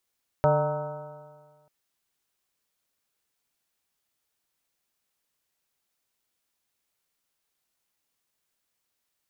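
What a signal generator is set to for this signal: stretched partials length 1.24 s, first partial 146 Hz, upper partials -14/-6/4/-6/-3/-20/-7.5/-17 dB, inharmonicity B 0.0036, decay 1.65 s, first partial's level -22.5 dB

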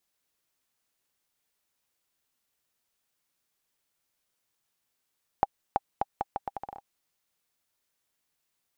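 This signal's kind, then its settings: bouncing ball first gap 0.33 s, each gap 0.77, 801 Hz, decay 31 ms -9 dBFS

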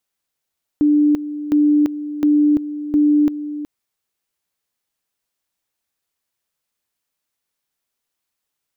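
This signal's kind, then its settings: two-level tone 296 Hz -10.5 dBFS, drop 13 dB, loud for 0.34 s, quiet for 0.37 s, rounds 4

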